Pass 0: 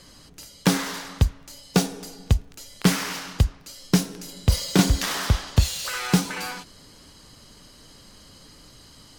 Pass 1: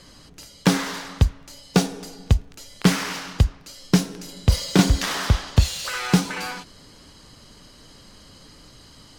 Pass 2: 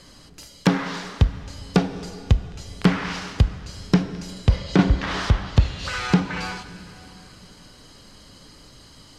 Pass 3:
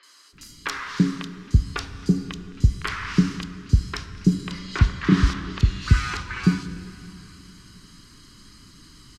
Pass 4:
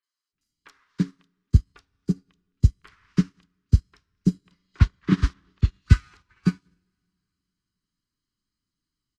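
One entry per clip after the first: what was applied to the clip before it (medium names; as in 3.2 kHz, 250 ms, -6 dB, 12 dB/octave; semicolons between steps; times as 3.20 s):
treble shelf 9.1 kHz -8 dB; trim +2 dB
low-pass that closes with the level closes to 2.3 kHz, closed at -17 dBFS; plate-style reverb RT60 3.8 s, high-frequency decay 0.9×, DRR 12.5 dB
high-order bell 640 Hz -14.5 dB 1.1 oct; three bands offset in time mids, highs, lows 30/330 ms, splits 510/3300 Hz
upward expansion 2.5:1, over -36 dBFS; trim +2.5 dB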